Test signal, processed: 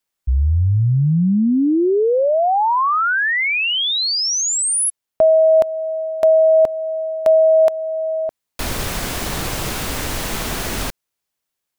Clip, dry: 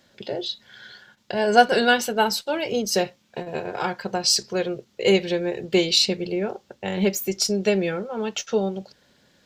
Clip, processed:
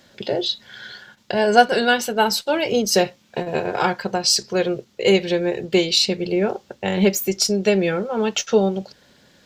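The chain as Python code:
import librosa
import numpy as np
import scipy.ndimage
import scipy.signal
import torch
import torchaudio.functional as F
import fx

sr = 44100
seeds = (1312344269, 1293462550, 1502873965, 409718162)

y = fx.rider(x, sr, range_db=3, speed_s=0.5)
y = F.gain(torch.from_numpy(y), 3.5).numpy()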